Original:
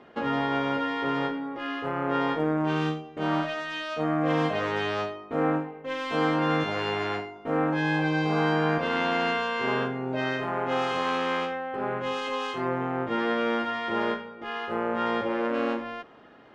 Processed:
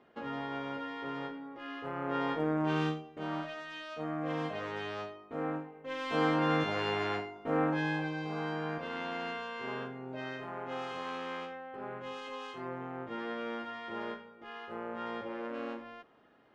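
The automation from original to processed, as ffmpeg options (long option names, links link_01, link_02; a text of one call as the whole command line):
ffmpeg -i in.wav -af "volume=2.5dB,afade=type=in:start_time=1.55:duration=1.26:silence=0.421697,afade=type=out:start_time=2.81:duration=0.45:silence=0.473151,afade=type=in:start_time=5.71:duration=0.45:silence=0.473151,afade=type=out:start_time=7.64:duration=0.51:silence=0.398107" out.wav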